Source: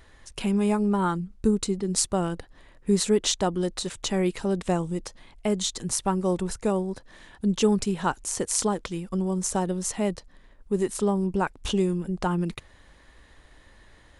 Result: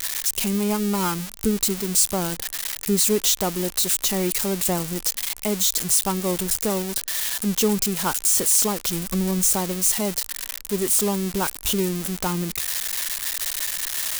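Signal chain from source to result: switching spikes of -14.5 dBFS; 8.87–9.51 low shelf 150 Hz +9.5 dB

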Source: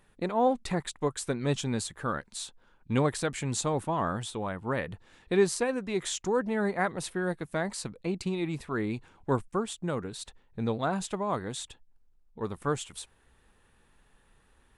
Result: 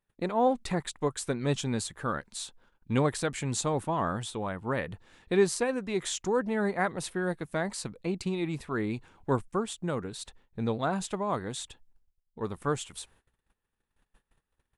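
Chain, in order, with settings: gate -59 dBFS, range -22 dB

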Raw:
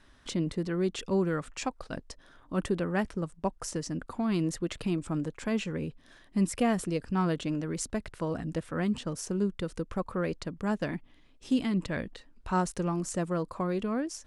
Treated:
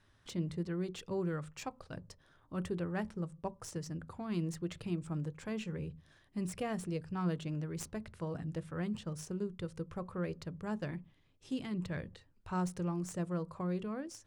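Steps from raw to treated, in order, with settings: tracing distortion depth 0.043 ms; on a send: reverb RT60 0.35 s, pre-delay 3 ms, DRR 17 dB; on the sum: gain -9 dB

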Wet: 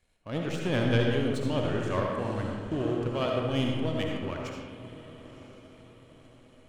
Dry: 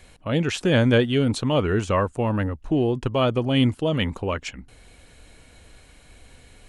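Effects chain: diffused feedback echo 1.024 s, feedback 53%, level -12 dB; power-law curve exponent 1.4; digital reverb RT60 1.5 s, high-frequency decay 0.5×, pre-delay 30 ms, DRR 0 dB; gain -7 dB

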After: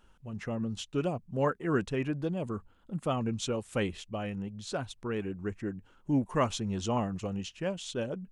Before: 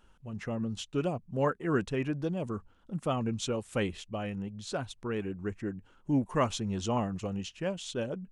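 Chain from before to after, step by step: 2.07–3.04 notch 5700 Hz, Q 5.8

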